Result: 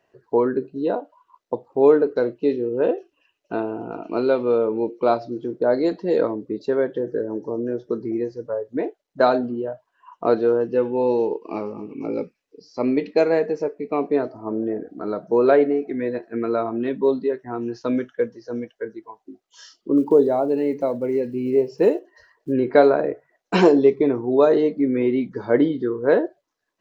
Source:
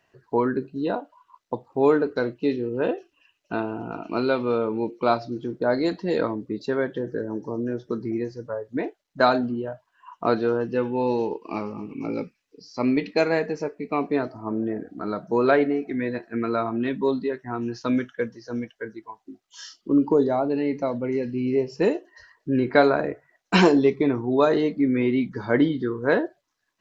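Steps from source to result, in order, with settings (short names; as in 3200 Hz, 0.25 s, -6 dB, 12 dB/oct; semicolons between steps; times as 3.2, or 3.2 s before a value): 19.97–22.54 block floating point 7-bit; bell 470 Hz +10 dB 1.6 oct; gain -4.5 dB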